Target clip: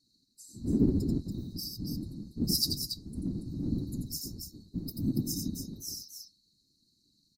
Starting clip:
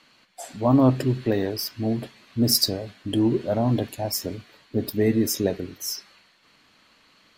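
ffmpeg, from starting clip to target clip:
ffmpeg -i in.wav -af "aecho=1:1:87.46|282.8:0.631|0.501,afftfilt=real='re*(1-between(b*sr/4096,290,3800))':imag='im*(1-between(b*sr/4096,290,3800))':win_size=4096:overlap=0.75,afftfilt=real='hypot(re,im)*cos(2*PI*random(0))':imag='hypot(re,im)*sin(2*PI*random(1))':win_size=512:overlap=0.75,volume=-4dB" out.wav

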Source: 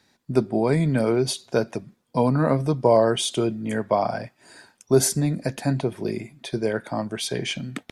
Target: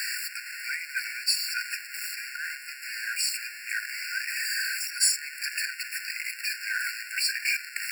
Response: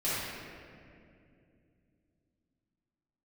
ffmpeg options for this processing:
-af "aeval=exprs='val(0)+0.5*0.0668*sgn(val(0))':channel_layout=same,afftfilt=real='re*eq(mod(floor(b*sr/1024/1400),2),1)':imag='im*eq(mod(floor(b*sr/1024/1400),2),1)':win_size=1024:overlap=0.75,volume=2dB"

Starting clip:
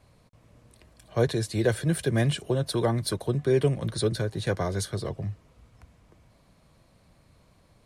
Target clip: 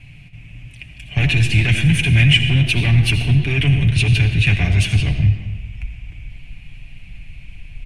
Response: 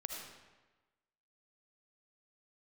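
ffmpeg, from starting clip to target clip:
-filter_complex "[0:a]asplit=2[link_01][link_02];[link_02]adelay=350,highpass=300,lowpass=3400,asoftclip=type=hard:threshold=-19.5dB,volume=-21dB[link_03];[link_01][link_03]amix=inputs=2:normalize=0,asplit=2[link_04][link_05];[link_05]asetrate=29433,aresample=44100,atempo=1.49831,volume=-10dB[link_06];[link_04][link_06]amix=inputs=2:normalize=0,asubboost=boost=5:cutoff=61,asoftclip=type=tanh:threshold=-21dB,lowpass=11000,asplit=2[link_07][link_08];[1:a]atrim=start_sample=2205,adelay=7[link_09];[link_08][link_09]afir=irnorm=-1:irlink=0,volume=-3dB[link_10];[link_07][link_10]amix=inputs=2:normalize=0,apsyclip=24.5dB,firequalizer=gain_entry='entry(120,0);entry(500,-27);entry(740,-15);entry(1100,-23);entry(2500,11);entry(4000,-13)':delay=0.05:min_phase=1,volume=-6dB"

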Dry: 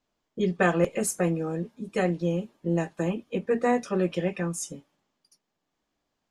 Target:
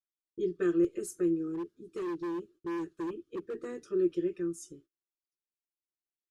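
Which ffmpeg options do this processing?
ffmpeg -i in.wav -filter_complex "[0:a]agate=range=-25dB:threshold=-49dB:ratio=16:detection=peak,firequalizer=gain_entry='entry(110,0);entry(230,-13);entry(340,13);entry(520,-11);entry(790,-27);entry(1300,-4);entry(2100,-13);entry(3200,-7);entry(4500,-5)':delay=0.05:min_phase=1,asplit=3[link_01][link_02][link_03];[link_01]afade=type=out:start_time=1.53:duration=0.02[link_04];[link_02]asoftclip=type=hard:threshold=-24dB,afade=type=in:start_time=1.53:duration=0.02,afade=type=out:start_time=3.78:duration=0.02[link_05];[link_03]afade=type=in:start_time=3.78:duration=0.02[link_06];[link_04][link_05][link_06]amix=inputs=3:normalize=0,volume=-8.5dB" out.wav

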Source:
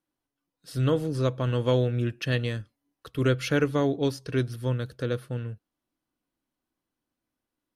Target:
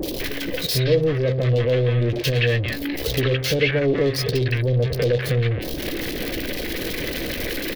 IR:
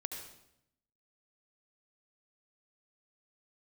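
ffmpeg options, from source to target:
-filter_complex "[0:a]aeval=exprs='val(0)+0.5*0.0531*sgn(val(0))':channel_layout=same,acrossover=split=310|3000[link_01][link_02][link_03];[link_03]acontrast=22[link_04];[link_01][link_02][link_04]amix=inputs=3:normalize=0,alimiter=limit=-16.5dB:level=0:latency=1:release=156,asoftclip=type=tanh:threshold=-22.5dB,equalizer=frequency=250:width_type=o:width=1:gain=-6,equalizer=frequency=500:width_type=o:width=1:gain=8,equalizer=frequency=1000:width_type=o:width=1:gain=-10,equalizer=frequency=2000:width_type=o:width=1:gain=8,equalizer=frequency=4000:width_type=o:width=1:gain=4,equalizer=frequency=8000:width_type=o:width=1:gain=-11,anlmdn=39.8,bandreject=frequency=1400:width=9.5,asplit=2[link_05][link_06];[link_06]adelay=15,volume=-13dB[link_07];[link_05][link_07]amix=inputs=2:normalize=0,bandreject=frequency=131.6:width_type=h:width=4,bandreject=frequency=263.2:width_type=h:width=4,bandreject=frequency=394.8:width_type=h:width=4,bandreject=frequency=526.4:width_type=h:width=4,bandreject=frequency=658:width_type=h:width=4,bandreject=frequency=789.6:width_type=h:width=4,acompressor=mode=upward:threshold=-28dB:ratio=2.5,acrossover=split=890|3300[link_08][link_09][link_10];[link_10]adelay=30[link_11];[link_09]adelay=200[link_12];[link_08][link_12][link_11]amix=inputs=3:normalize=0,adynamicequalizer=threshold=0.0141:dfrequency=2100:dqfactor=0.7:tfrequency=2100:tqfactor=0.7:attack=5:release=100:ratio=0.375:range=3:mode=cutabove:tftype=highshelf,volume=8.5dB"

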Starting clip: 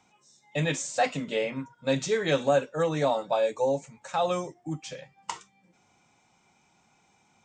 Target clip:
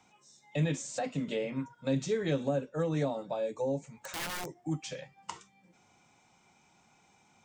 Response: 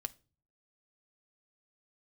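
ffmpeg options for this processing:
-filter_complex "[0:a]acrossover=split=400[link_01][link_02];[link_02]acompressor=threshold=-38dB:ratio=5[link_03];[link_01][link_03]amix=inputs=2:normalize=0,asettb=1/sr,asplit=3[link_04][link_05][link_06];[link_04]atrim=end=3.924[link_07];[link_05]atrim=start=3.92:end=4.61,asetpts=PTS-STARTPTS,afade=type=in:duration=0.004:curve=qsin,afade=type=out:start_time=0.686:duration=0.004:curve=qsin,aeval=exprs='(mod(39.8*val(0)+1,2)-1)/39.8':channel_layout=same[link_08];[link_06]atrim=start=4.606[link_09];[link_07][link_08]acrossfade=duration=0.004:curve1=hsin:curve2=qsin[link_10];[link_10][link_09]acrossfade=duration=0.004:curve1=qsin:curve2=hsin"

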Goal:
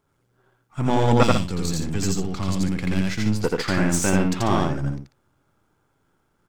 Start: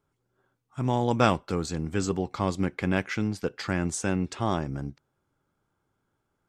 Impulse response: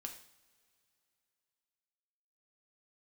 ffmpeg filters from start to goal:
-filter_complex "[0:a]aeval=exprs='if(lt(val(0),0),0.447*val(0),val(0))':channel_layout=same,asettb=1/sr,asplit=3[link_01][link_02][link_03];[link_01]atrim=end=1.234[link_04];[link_02]atrim=start=1.23:end=3.4,asetpts=PTS-STARTPTS,afade=type=in:duration=0.004:curve=qsin,afade=type=out:start_time=2.166:duration=0.004:curve=qsin,acrossover=split=230|3000[link_05][link_06][link_07];[link_06]acompressor=threshold=-43dB:ratio=6[link_08];[link_05][link_08][link_07]amix=inputs=3:normalize=0[link_09];[link_03]atrim=start=3.396[link_10];[link_04][link_09]acrossfade=duration=0.004:curve1=hsin:curve2=qsin[link_11];[link_11][link_10]acrossfade=duration=0.004:curve1=qsin:curve2=hsin,aecho=1:1:84.55|142.9:0.891|0.355,volume=8.5dB"

